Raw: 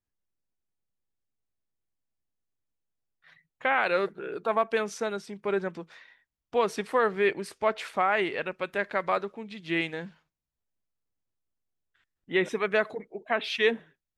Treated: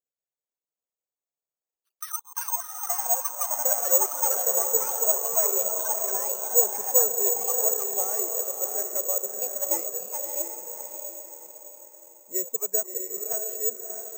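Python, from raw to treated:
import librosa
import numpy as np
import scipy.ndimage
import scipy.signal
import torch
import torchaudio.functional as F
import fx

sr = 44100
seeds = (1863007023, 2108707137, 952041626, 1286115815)

p1 = fx.fade_out_tail(x, sr, length_s=1.0)
p2 = fx.dereverb_blind(p1, sr, rt60_s=0.97)
p3 = (np.mod(10.0 ** (43.5 / 20.0) * p2 + 1.0, 2.0) - 1.0) / 10.0 ** (43.5 / 20.0)
p4 = p2 + F.gain(torch.from_numpy(p3), -8.0).numpy()
p5 = fx.bandpass_q(p4, sr, hz=510.0, q=4.7)
p6 = fx.echo_pitch(p5, sr, ms=163, semitones=5, count=3, db_per_echo=-3.0)
p7 = p6 + fx.echo_diffused(p6, sr, ms=665, feedback_pct=42, wet_db=-4.0, dry=0)
y = (np.kron(p7[::6], np.eye(6)[0]) * 6)[:len(p7)]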